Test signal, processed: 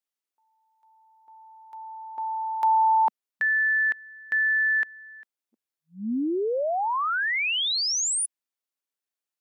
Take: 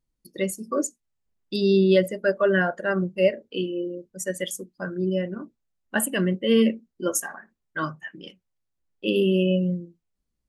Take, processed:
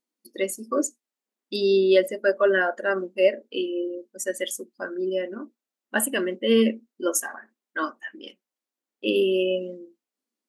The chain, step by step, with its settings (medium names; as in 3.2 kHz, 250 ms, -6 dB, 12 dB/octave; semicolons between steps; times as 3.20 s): brick-wall FIR high-pass 210 Hz; trim +1 dB